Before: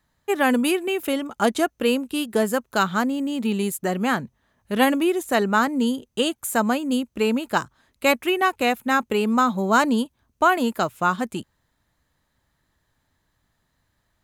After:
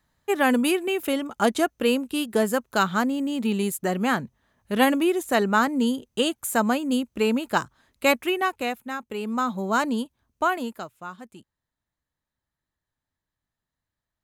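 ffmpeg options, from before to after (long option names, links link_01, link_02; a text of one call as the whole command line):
ffmpeg -i in.wav -af "volume=7dB,afade=type=out:start_time=8.09:duration=0.9:silence=0.251189,afade=type=in:start_time=8.99:duration=0.53:silence=0.398107,afade=type=out:start_time=10.45:duration=0.46:silence=0.266073" out.wav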